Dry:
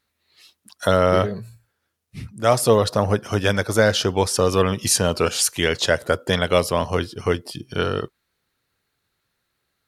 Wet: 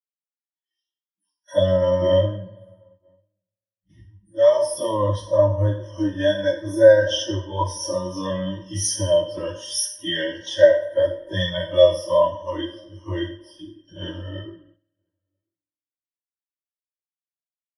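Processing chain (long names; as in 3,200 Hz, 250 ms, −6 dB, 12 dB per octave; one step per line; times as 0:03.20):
peak hold with a decay on every bin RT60 0.38 s
time stretch by phase vocoder 1.8×
low-pass filter 12,000 Hz 12 dB per octave
comb filter 3.2 ms, depth 56%
slap from a distant wall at 170 metres, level −25 dB
spring reverb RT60 2.2 s, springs 48 ms, chirp 75 ms, DRR 12 dB
noise gate −42 dBFS, range −8 dB
EQ curve with evenly spaced ripples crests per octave 1.2, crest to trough 18 dB
every bin expanded away from the loudest bin 1.5 to 1
level −3.5 dB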